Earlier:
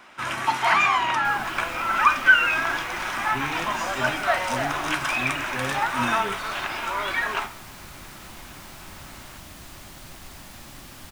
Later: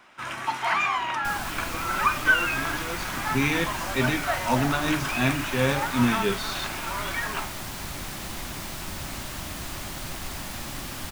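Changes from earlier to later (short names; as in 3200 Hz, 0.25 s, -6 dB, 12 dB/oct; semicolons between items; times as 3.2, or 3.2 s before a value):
speech +8.5 dB; first sound -5.0 dB; second sound +8.0 dB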